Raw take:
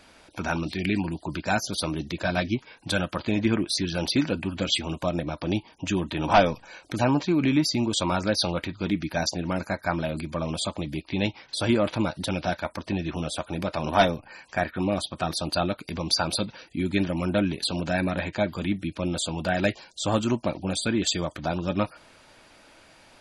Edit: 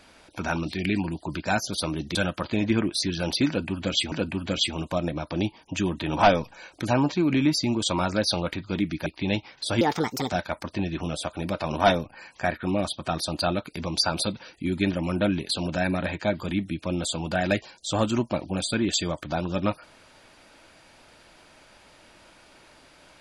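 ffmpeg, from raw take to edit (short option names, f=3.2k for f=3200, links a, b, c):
-filter_complex "[0:a]asplit=6[a][b][c][d][e][f];[a]atrim=end=2.152[g];[b]atrim=start=2.898:end=4.872[h];[c]atrim=start=4.228:end=9.172[i];[d]atrim=start=10.968:end=11.724[j];[e]atrim=start=11.72:end=12.45,asetpts=PTS-STARTPTS,asetrate=63504,aresample=44100,atrim=end_sample=22356,asetpts=PTS-STARTPTS[k];[f]atrim=start=12.446[l];[g][h]acrossfade=d=0.004:c1=hsin:c2=hsin[m];[m][i]acrossfade=d=0.004:c1=hsin:c2=hsin[n];[n][j]acrossfade=d=0.004:c1=hsin:c2=hsin[o];[o][k]acrossfade=d=0.004:c1=hsin:c2=hsin[p];[p][l]acrossfade=d=0.004:c1=hsin:c2=hsin"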